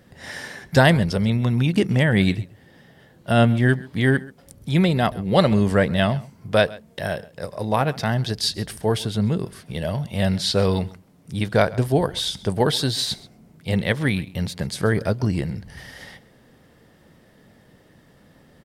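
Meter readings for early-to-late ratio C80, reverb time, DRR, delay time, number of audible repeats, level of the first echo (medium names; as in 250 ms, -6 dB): no reverb, no reverb, no reverb, 133 ms, 1, -21.0 dB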